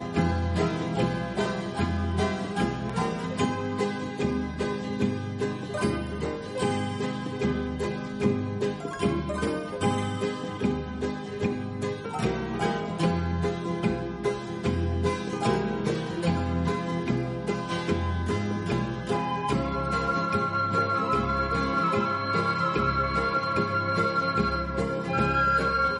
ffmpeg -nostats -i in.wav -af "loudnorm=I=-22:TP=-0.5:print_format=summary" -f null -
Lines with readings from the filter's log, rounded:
Input Integrated:    -27.4 LUFS
Input True Peak:     -10.3 dBTP
Input LRA:             4.2 LU
Input Threshold:     -37.4 LUFS